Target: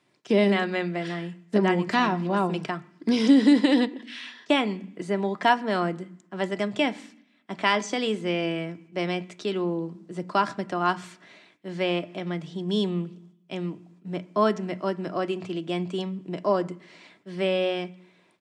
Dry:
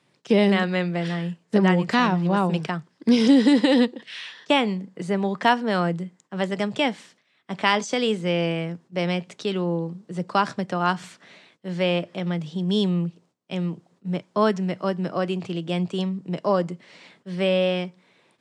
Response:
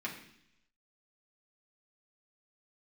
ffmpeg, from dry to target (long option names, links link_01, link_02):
-filter_complex "[0:a]aecho=1:1:3:0.34,asplit=2[link_01][link_02];[1:a]atrim=start_sample=2205,lowpass=3300[link_03];[link_02][link_03]afir=irnorm=-1:irlink=0,volume=-13.5dB[link_04];[link_01][link_04]amix=inputs=2:normalize=0,volume=-3.5dB"